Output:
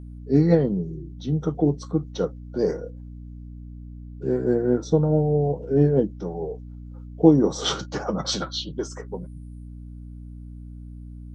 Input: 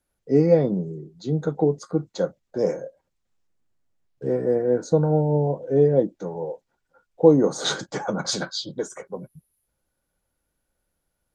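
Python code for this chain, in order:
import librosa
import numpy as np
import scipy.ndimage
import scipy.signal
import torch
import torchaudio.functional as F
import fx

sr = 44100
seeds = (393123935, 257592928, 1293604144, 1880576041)

y = fx.formant_shift(x, sr, semitones=-2)
y = fx.add_hum(y, sr, base_hz=60, snr_db=14)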